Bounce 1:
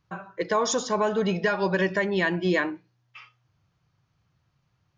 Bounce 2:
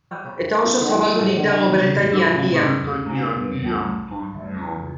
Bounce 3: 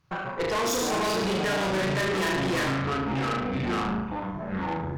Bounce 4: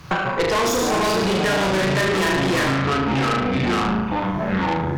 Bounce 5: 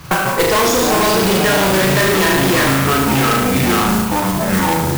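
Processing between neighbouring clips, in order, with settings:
ever faster or slower copies 90 ms, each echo -6 st, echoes 3, each echo -6 dB; on a send: flutter echo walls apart 6.3 m, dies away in 0.77 s; on the sum: trim +3.5 dB
valve stage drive 28 dB, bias 0.65; hum notches 50/100/150/200/250/300 Hz; trim +3.5 dB
three bands compressed up and down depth 70%; trim +6.5 dB
modulation noise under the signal 10 dB; trim +5.5 dB

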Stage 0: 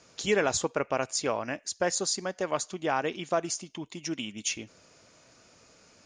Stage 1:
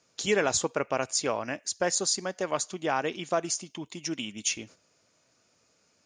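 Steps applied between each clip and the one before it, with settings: high-pass 70 Hz; gate -50 dBFS, range -11 dB; treble shelf 5.3 kHz +4.5 dB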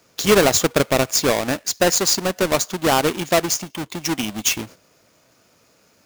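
square wave that keeps the level; trim +6.5 dB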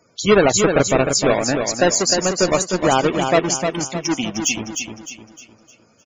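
loudest bins only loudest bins 64; feedback delay 306 ms, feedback 40%, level -6 dB; trim +1.5 dB

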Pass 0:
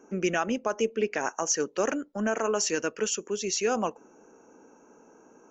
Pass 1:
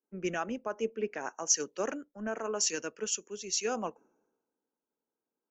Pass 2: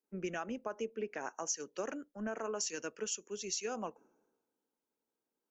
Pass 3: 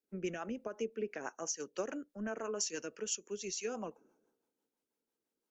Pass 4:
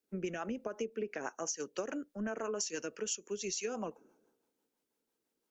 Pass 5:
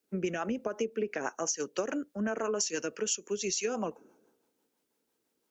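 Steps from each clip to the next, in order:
three bands expanded up and down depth 100%; trim -7.5 dB
compression 5:1, threshold -35 dBFS, peak gain reduction 12.5 dB
rotary cabinet horn 6 Hz; trim +2 dB
compression, threshold -37 dBFS, peak gain reduction 6.5 dB; trim +4 dB
high-pass 44 Hz; trim +5.5 dB

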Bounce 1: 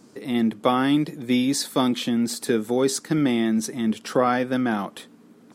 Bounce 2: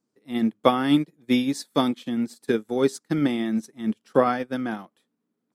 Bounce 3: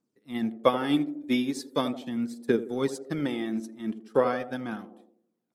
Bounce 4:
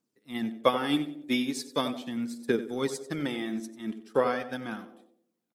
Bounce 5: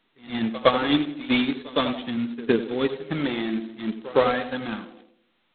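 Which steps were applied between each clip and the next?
upward expansion 2.5:1, over -37 dBFS; trim +4 dB
band-passed feedback delay 81 ms, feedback 59%, band-pass 410 Hz, level -10 dB; phaser 0.4 Hz, delay 3.4 ms, feedback 39%; trim -5 dB
tilt shelf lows -3 dB, about 1.3 kHz; feedback delay 93 ms, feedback 27%, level -15.5 dB
coarse spectral quantiser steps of 15 dB; pre-echo 112 ms -19 dB; trim +6 dB; G.726 16 kbps 8 kHz

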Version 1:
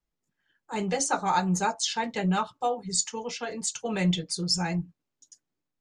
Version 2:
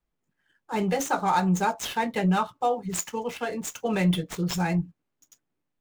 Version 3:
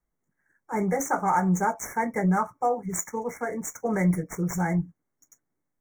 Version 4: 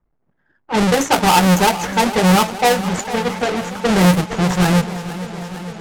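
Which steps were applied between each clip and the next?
median filter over 9 samples; in parallel at +1 dB: peak limiter -21.5 dBFS, peak gain reduction 8 dB; on the sum: trim -2.5 dB
FFT band-reject 2.3–5.5 kHz
square wave that keeps the level; level-controlled noise filter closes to 1.5 kHz, open at -17.5 dBFS; modulated delay 458 ms, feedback 75%, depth 73 cents, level -14 dB; trim +7 dB

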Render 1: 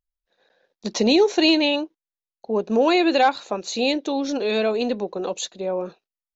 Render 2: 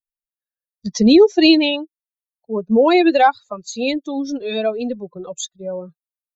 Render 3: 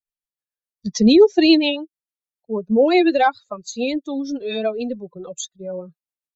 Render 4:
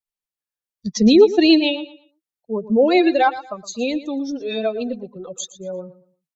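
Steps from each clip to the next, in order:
expander on every frequency bin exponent 2; bass shelf 310 Hz +8 dB; trim +5.5 dB
rotary cabinet horn 7 Hz
feedback delay 116 ms, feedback 26%, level -15.5 dB

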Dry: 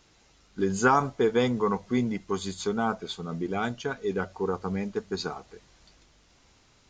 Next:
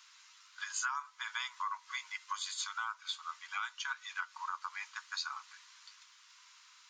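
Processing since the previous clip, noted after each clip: Chebyshev high-pass 980 Hz, order 6; compression 6:1, threshold -39 dBFS, peak gain reduction 18 dB; trim +4 dB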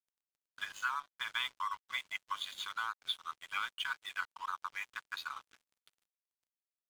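resonant high shelf 4.1 kHz -8 dB, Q 3; crossover distortion -49.5 dBFS; trim +1 dB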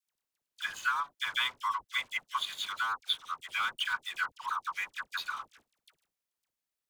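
phase dispersion lows, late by 70 ms, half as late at 1.1 kHz; trim +5.5 dB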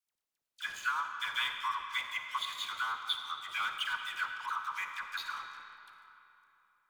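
algorithmic reverb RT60 3.3 s, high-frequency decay 0.65×, pre-delay 10 ms, DRR 5 dB; trim -3 dB

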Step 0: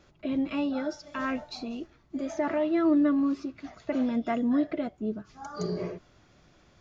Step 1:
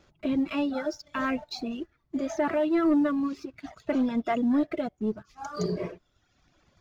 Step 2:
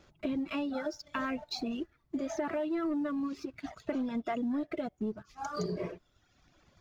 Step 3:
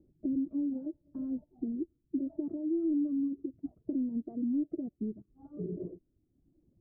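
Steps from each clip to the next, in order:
reverb removal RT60 1.1 s; waveshaping leveller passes 1
compression, threshold -31 dBFS, peak gain reduction 10.5 dB
four-pole ladder low-pass 370 Hz, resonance 50%; trim +5 dB

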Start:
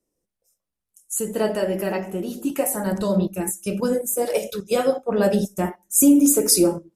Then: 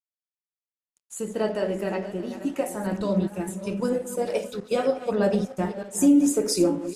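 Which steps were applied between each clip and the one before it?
backward echo that repeats 307 ms, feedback 45%, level -11.5 dB; crossover distortion -45.5 dBFS; distance through air 69 m; trim -3 dB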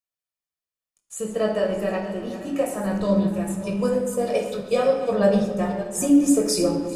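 reverberation RT60 1.3 s, pre-delay 6 ms, DRR 3.5 dB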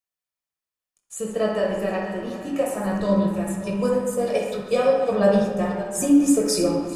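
feedback echo behind a band-pass 64 ms, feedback 56%, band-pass 1.2 kHz, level -4 dB

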